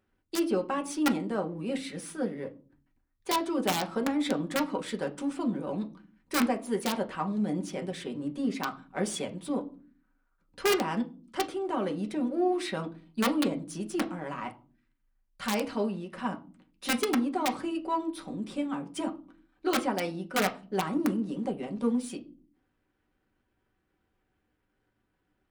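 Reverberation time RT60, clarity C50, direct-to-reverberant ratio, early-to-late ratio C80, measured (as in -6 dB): no single decay rate, 17.5 dB, 3.0 dB, 22.0 dB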